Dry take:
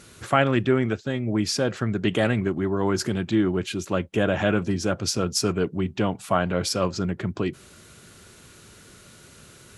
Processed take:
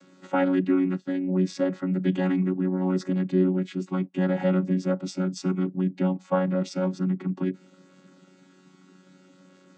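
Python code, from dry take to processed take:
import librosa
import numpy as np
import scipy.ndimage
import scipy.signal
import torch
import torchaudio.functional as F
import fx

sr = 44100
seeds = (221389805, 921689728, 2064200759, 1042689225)

y = fx.chord_vocoder(x, sr, chord='bare fifth', root=54)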